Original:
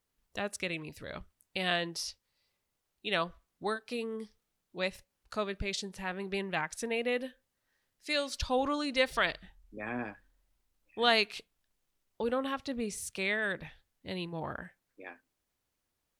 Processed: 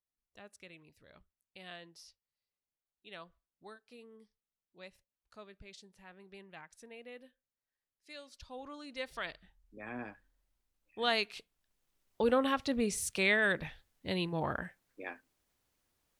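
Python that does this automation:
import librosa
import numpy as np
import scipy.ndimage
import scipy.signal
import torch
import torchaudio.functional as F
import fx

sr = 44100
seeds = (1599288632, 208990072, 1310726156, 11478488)

y = fx.gain(x, sr, db=fx.line((8.46, -18.0), (9.06, -12.0), (10.07, -5.0), (11.31, -5.0), (12.24, 3.5)))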